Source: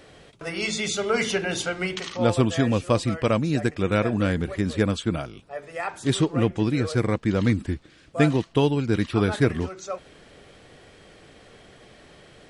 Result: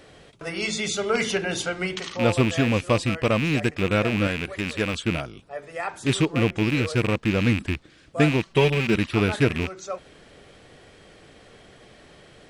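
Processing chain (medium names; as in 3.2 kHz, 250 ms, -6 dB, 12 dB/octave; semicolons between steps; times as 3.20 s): rattle on loud lows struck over -28 dBFS, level -17 dBFS; 4.27–4.94 s: bass shelf 370 Hz -7.5 dB; 8.45–8.95 s: comb 5.2 ms, depth 75%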